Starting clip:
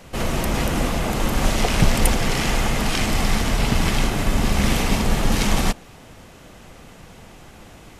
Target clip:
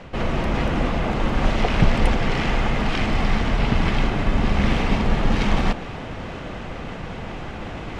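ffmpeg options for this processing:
ffmpeg -i in.wav -af "lowpass=3000,areverse,acompressor=mode=upward:threshold=-19dB:ratio=2.5,areverse" out.wav

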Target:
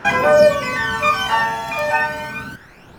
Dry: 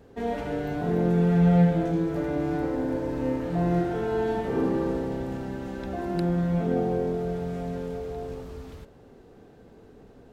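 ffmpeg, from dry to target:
ffmpeg -i in.wav -af "asetrate=152586,aresample=44100,aphaser=in_gain=1:out_gain=1:delay=1.2:decay=0.65:speed=0.29:type=sinusoidal,volume=6dB" out.wav

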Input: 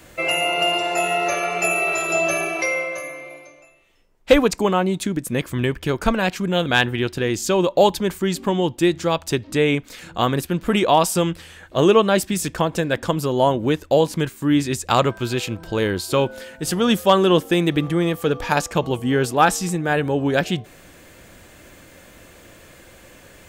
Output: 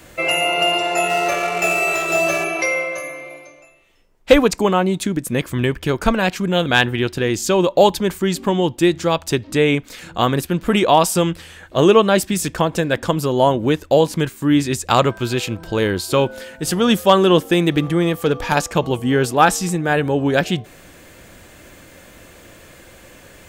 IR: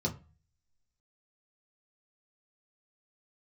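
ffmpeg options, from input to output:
-filter_complex "[0:a]asplit=3[link_01][link_02][link_03];[link_01]afade=type=out:start_time=1.08:duration=0.02[link_04];[link_02]adynamicsmooth=sensitivity=5.5:basefreq=1200,afade=type=in:start_time=1.08:duration=0.02,afade=type=out:start_time=2.43:duration=0.02[link_05];[link_03]afade=type=in:start_time=2.43:duration=0.02[link_06];[link_04][link_05][link_06]amix=inputs=3:normalize=0,asettb=1/sr,asplit=3[link_07][link_08][link_09];[link_07]atrim=end=17.714[link_10];[link_08]atrim=start=17.71:end=18.55,asetpts=PTS-STARTPTS,afade=type=in:duration=0.004:curve=qsin,afade=type=out:start_time=0.836:duration=0.004:curve=qsin,aeval=exprs='clip(val(0),-1,0.251)':channel_layout=same[link_11];[link_09]atrim=start=18.546[link_12];[link_10][link_11]acrossfade=duration=0.004:curve1=hsin:curve2=qsin[link_13];[link_13][link_12]acrossfade=duration=0.004:curve1=qsin:curve2=hsin,volume=2.5dB"

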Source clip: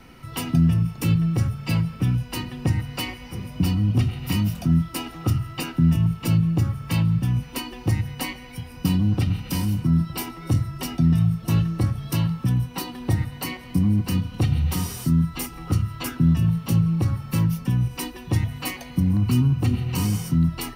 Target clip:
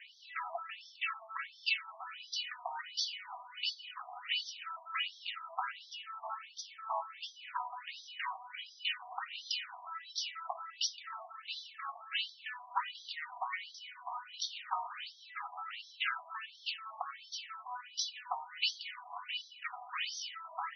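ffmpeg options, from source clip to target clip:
ffmpeg -i in.wav -af "tremolo=f=3.6:d=0.42,afftfilt=real='re*between(b*sr/1024,850*pow(4500/850,0.5+0.5*sin(2*PI*1.4*pts/sr))/1.41,850*pow(4500/850,0.5+0.5*sin(2*PI*1.4*pts/sr))*1.41)':imag='im*between(b*sr/1024,850*pow(4500/850,0.5+0.5*sin(2*PI*1.4*pts/sr))/1.41,850*pow(4500/850,0.5+0.5*sin(2*PI*1.4*pts/sr))*1.41)':win_size=1024:overlap=0.75,volume=5dB" out.wav

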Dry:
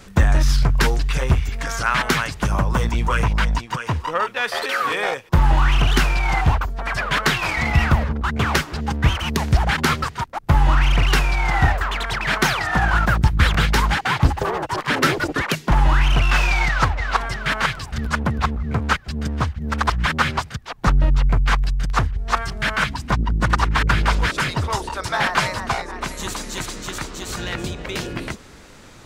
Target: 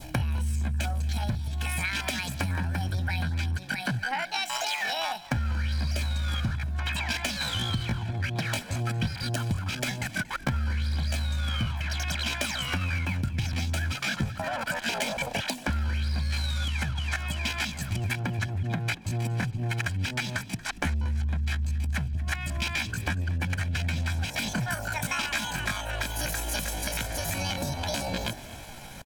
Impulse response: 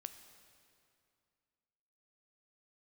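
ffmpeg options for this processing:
-filter_complex "[0:a]adynamicequalizer=threshold=0.0251:dfrequency=1200:dqfactor=0.95:tfrequency=1200:tqfactor=0.95:attack=5:release=100:ratio=0.375:range=1.5:mode=cutabove:tftype=bell,aecho=1:1:2:0.63,acompressor=threshold=-26dB:ratio=8,asetrate=70004,aresample=44100,atempo=0.629961,asplit=5[link_01][link_02][link_03][link_04][link_05];[link_02]adelay=232,afreqshift=55,volume=-19.5dB[link_06];[link_03]adelay=464,afreqshift=110,volume=-25.9dB[link_07];[link_04]adelay=696,afreqshift=165,volume=-32.3dB[link_08];[link_05]adelay=928,afreqshift=220,volume=-38.6dB[link_09];[link_01][link_06][link_07][link_08][link_09]amix=inputs=5:normalize=0"

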